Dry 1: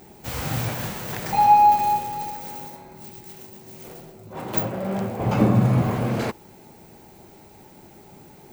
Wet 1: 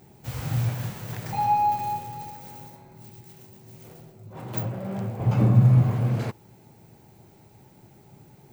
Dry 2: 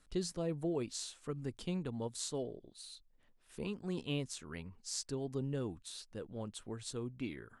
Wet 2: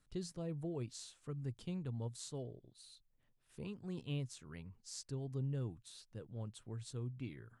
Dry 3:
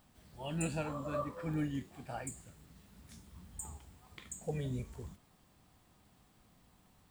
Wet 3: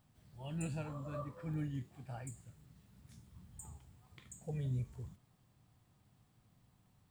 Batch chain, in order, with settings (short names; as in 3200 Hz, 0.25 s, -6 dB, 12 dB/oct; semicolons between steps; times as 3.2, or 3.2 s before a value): bell 120 Hz +12.5 dB 0.8 oct; gain -8 dB